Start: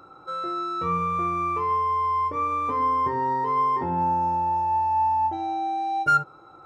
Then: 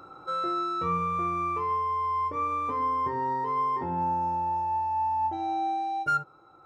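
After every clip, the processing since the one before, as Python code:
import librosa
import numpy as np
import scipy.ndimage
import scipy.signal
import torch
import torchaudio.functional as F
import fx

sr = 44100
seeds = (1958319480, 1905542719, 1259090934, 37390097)

y = fx.rider(x, sr, range_db=5, speed_s=0.5)
y = y * librosa.db_to_amplitude(-4.0)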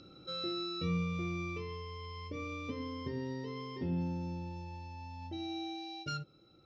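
y = fx.curve_eq(x, sr, hz=(140.0, 220.0, 400.0, 580.0, 920.0, 1500.0, 2900.0, 5400.0, 10000.0), db=(0, 3, -7, -8, -27, -16, 4, 7, -27))
y = y * librosa.db_to_amplitude(1.0)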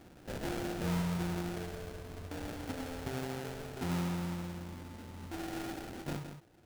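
y = fx.sample_hold(x, sr, seeds[0], rate_hz=1100.0, jitter_pct=20)
y = y + 10.0 ** (-9.0 / 20.0) * np.pad(y, (int(166 * sr / 1000.0), 0))[:len(y)]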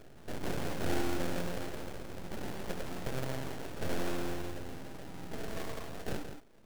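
y = np.abs(x)
y = y * librosa.db_to_amplitude(4.5)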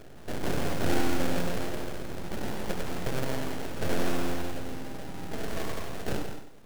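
y = fx.echo_crushed(x, sr, ms=96, feedback_pct=35, bits=10, wet_db=-9.0)
y = y * librosa.db_to_amplitude(5.5)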